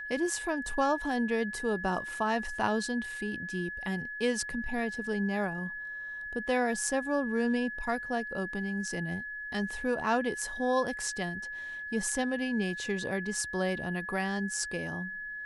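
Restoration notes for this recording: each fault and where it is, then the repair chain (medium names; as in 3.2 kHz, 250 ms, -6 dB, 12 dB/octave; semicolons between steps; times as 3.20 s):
whine 1.7 kHz -37 dBFS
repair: band-stop 1.7 kHz, Q 30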